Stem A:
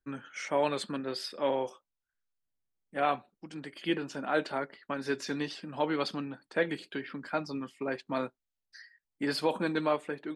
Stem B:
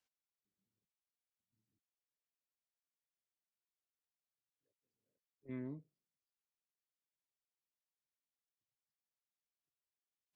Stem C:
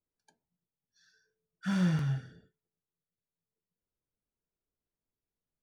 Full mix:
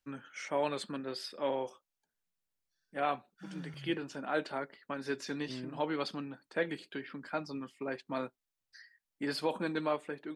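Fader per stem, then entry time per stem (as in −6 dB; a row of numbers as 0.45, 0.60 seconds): −4.0, +1.0, −17.5 decibels; 0.00, 0.00, 1.75 seconds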